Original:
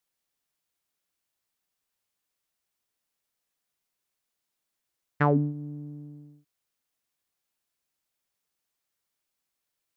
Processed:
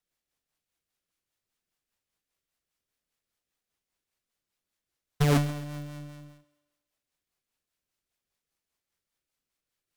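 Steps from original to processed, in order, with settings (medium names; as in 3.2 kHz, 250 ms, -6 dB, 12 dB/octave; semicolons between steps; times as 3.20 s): square wave that keeps the level; rotary cabinet horn 5 Hz; bass shelf 81 Hz +7 dB; on a send: thinning echo 133 ms, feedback 49%, high-pass 250 Hz, level -17.5 dB; on the sum: trim -3 dB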